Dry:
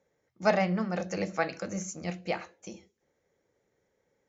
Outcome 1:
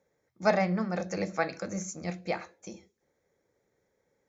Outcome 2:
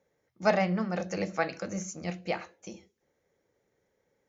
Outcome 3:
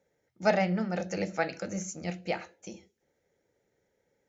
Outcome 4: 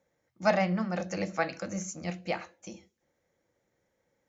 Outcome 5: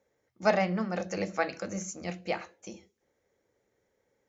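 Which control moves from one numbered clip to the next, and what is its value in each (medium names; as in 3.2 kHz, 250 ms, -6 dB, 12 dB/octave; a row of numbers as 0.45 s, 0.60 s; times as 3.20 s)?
band-stop, frequency: 2.9 kHz, 7.9 kHz, 1.1 kHz, 420 Hz, 160 Hz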